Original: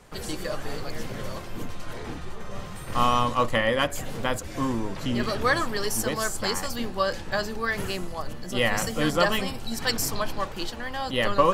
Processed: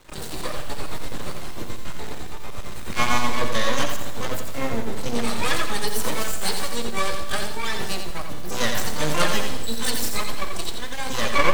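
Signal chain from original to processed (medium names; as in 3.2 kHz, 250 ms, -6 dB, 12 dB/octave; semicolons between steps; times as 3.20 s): peaking EQ 3.9 kHz +8.5 dB 0.28 oct; harmony voices +12 st -2 dB; half-wave rectifier; Schroeder reverb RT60 1.4 s, combs from 27 ms, DRR 11 dB; bit-crushed delay 86 ms, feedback 35%, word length 7-bit, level -6 dB; trim +1 dB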